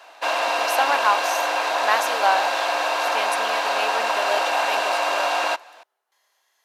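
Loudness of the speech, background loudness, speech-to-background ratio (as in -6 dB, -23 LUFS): -26.5 LUFS, -22.0 LUFS, -4.5 dB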